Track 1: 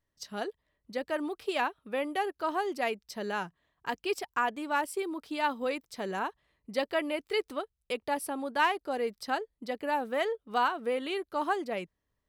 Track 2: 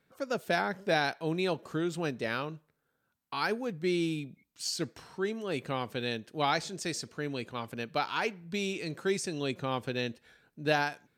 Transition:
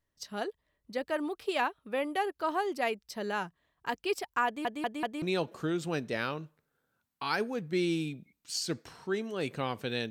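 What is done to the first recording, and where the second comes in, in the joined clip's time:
track 1
0:04.46: stutter in place 0.19 s, 4 plays
0:05.22: continue with track 2 from 0:01.33

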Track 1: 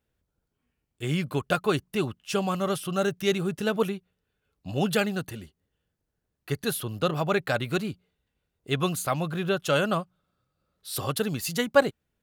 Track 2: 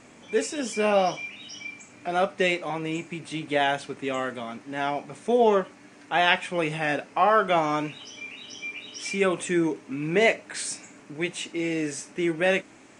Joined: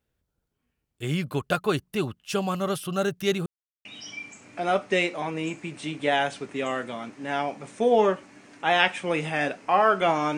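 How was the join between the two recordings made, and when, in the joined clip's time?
track 1
0:03.46–0:03.85: silence
0:03.85: continue with track 2 from 0:01.33

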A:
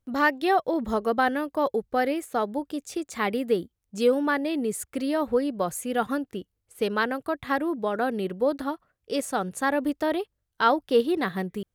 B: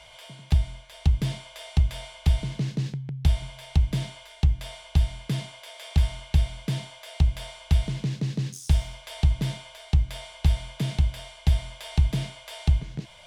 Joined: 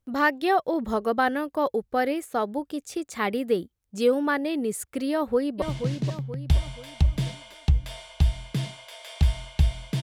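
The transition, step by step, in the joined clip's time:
A
0:05.10–0:05.62: delay throw 480 ms, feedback 45%, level −8.5 dB
0:05.62: continue with B from 0:02.37

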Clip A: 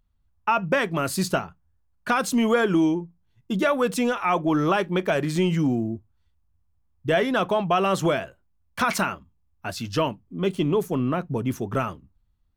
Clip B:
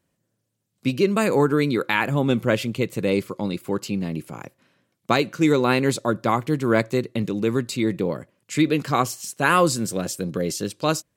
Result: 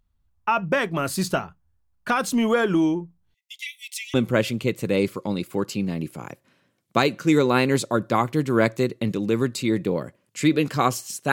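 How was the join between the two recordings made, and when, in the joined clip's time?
clip A
0:03.34–0:04.14: linear-phase brick-wall high-pass 1,900 Hz
0:04.14: continue with clip B from 0:02.28

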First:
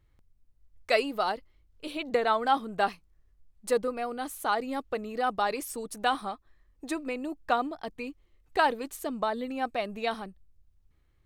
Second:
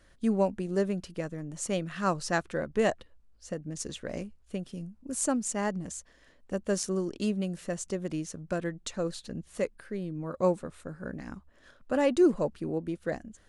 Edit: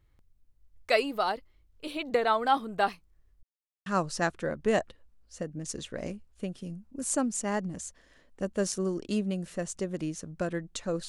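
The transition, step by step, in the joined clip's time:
first
0:03.43–0:03.86: silence
0:03.86: continue with second from 0:01.97

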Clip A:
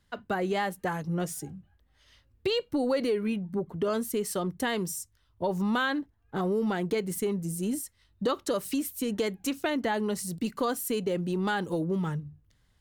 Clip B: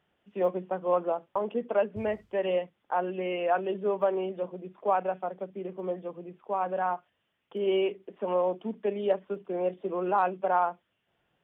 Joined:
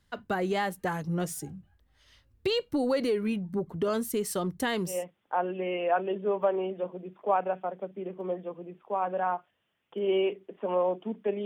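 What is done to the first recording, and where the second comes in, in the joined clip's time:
clip A
0:04.96: continue with clip B from 0:02.55, crossfade 0.22 s

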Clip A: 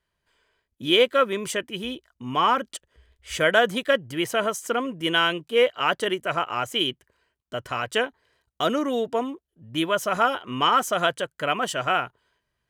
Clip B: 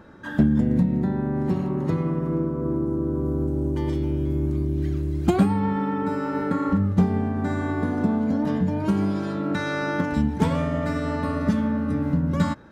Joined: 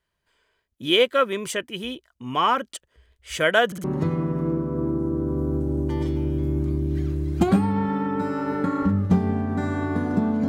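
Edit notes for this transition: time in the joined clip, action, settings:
clip A
0:03.66: stutter in place 0.06 s, 3 plays
0:03.84: continue with clip B from 0:01.71

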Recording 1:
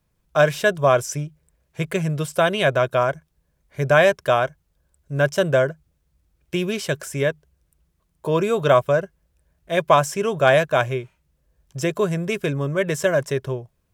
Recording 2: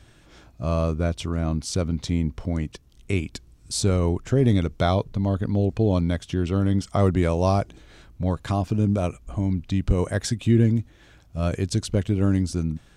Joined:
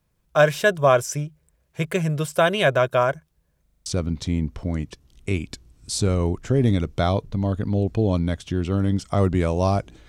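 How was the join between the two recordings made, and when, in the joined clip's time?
recording 1
0:03.62: stutter in place 0.04 s, 6 plays
0:03.86: continue with recording 2 from 0:01.68

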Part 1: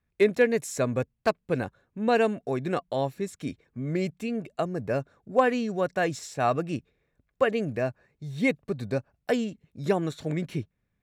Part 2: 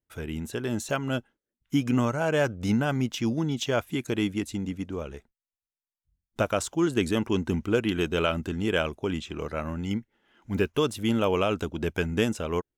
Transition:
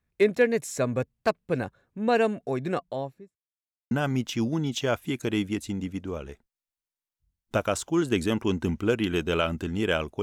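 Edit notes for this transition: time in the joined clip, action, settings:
part 1
0:02.69–0:03.41: fade out and dull
0:03.41–0:03.91: silence
0:03.91: continue with part 2 from 0:02.76

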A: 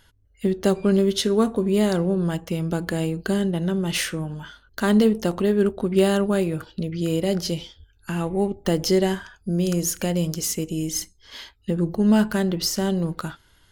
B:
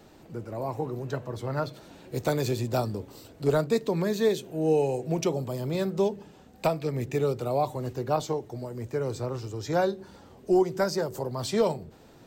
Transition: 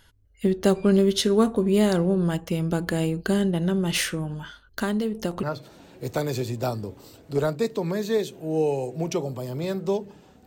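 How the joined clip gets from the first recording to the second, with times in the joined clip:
A
0:04.08–0:05.43: downward compressor 10 to 1, threshold −22 dBFS
0:05.43: continue with B from 0:01.54

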